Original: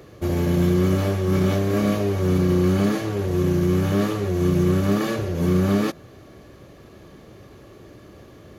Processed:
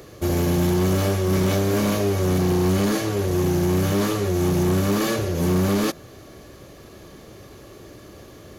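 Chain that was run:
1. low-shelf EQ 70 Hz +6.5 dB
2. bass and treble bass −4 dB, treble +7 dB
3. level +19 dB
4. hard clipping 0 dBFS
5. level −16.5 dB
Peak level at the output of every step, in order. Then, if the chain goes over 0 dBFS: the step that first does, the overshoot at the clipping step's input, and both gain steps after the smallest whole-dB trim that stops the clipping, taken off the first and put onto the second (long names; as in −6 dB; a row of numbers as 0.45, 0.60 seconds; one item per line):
−8.0, −10.0, +9.0, 0.0, −16.5 dBFS
step 3, 9.0 dB
step 3 +10 dB, step 5 −7.5 dB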